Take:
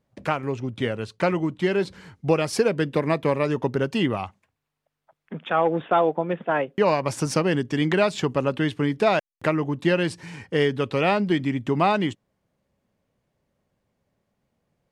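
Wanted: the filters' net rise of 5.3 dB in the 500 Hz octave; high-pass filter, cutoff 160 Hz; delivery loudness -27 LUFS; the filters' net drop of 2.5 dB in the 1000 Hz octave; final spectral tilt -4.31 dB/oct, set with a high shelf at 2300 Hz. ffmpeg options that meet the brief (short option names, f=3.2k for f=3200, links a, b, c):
-af "highpass=160,equalizer=f=500:t=o:g=8.5,equalizer=f=1k:t=o:g=-6.5,highshelf=f=2.3k:g=-6,volume=-6dB"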